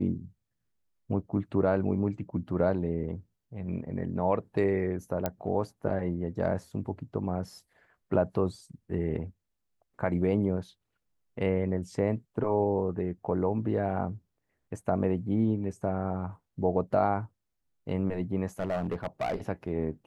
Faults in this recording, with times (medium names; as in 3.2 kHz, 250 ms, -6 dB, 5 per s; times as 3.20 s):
5.26 s: pop -14 dBFS
18.59–19.36 s: clipped -25.5 dBFS